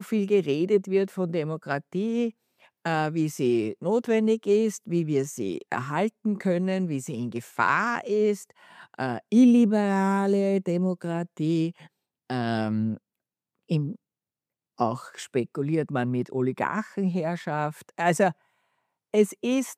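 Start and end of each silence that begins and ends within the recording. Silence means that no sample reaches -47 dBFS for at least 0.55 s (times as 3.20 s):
12.97–13.69 s
13.96–14.78 s
18.32–19.13 s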